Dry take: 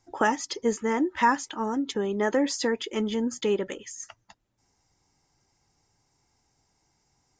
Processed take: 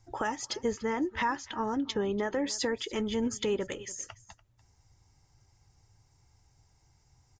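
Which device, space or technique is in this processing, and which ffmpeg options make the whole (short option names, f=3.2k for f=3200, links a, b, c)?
car stereo with a boomy subwoofer: -filter_complex "[0:a]lowshelf=f=150:t=q:w=1.5:g=10.5,alimiter=limit=-20dB:level=0:latency=1:release=314,asettb=1/sr,asplit=3[a][b][c];[a]atrim=end=0.684[d];[b]atrim=start=0.68:end=2.46,asetpts=PTS-STARTPTS,afade=t=in:d=0.004:c=qsin,afade=t=out:st=1.776:d=0.004:c=qsin,lowpass=f=6.1k:w=0.5412,lowpass=f=6.1k:w=1.3066[e];[c]atrim=start=2.456[f];[d][e]acrossfade=d=0.004:c1=hsin:c2=qsin[g];[g][f]acrossfade=d=0.004:c1=qsin:c2=hsin,aecho=1:1:291:0.1"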